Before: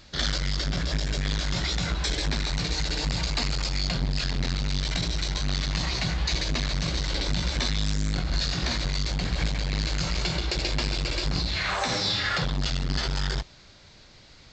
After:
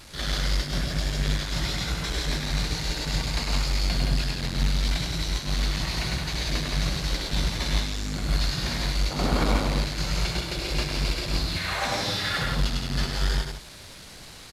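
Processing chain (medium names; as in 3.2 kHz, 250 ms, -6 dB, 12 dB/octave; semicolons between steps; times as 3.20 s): one-bit delta coder 64 kbps, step -34.5 dBFS; time-frequency box 9.11–9.68 s, 210–1500 Hz +10 dB; loudspeakers at several distances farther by 35 m -3 dB, 58 m -4 dB; upward expansion 1.5:1, over -31 dBFS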